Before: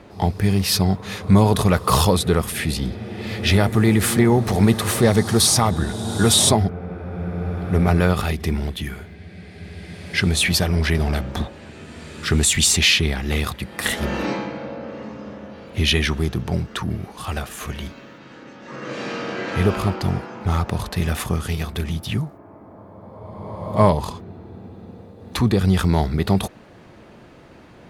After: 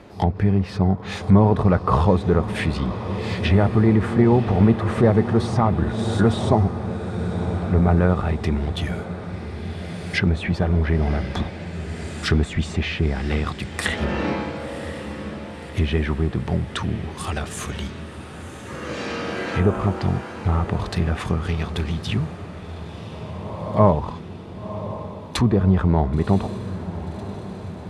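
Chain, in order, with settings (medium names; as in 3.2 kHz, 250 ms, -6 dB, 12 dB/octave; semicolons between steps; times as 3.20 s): low-pass that closes with the level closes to 1.3 kHz, closed at -16 dBFS; dynamic bell 8.7 kHz, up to +8 dB, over -57 dBFS, Q 1.3; on a send: echo that smears into a reverb 1056 ms, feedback 60%, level -12.5 dB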